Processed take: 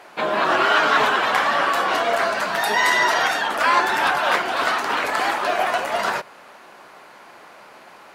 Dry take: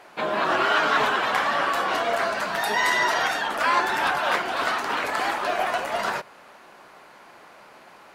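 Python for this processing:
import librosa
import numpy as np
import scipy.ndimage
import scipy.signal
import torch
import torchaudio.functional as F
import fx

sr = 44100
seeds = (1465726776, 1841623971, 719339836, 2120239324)

y = fx.low_shelf(x, sr, hz=150.0, db=-5.0)
y = y * librosa.db_to_amplitude(4.0)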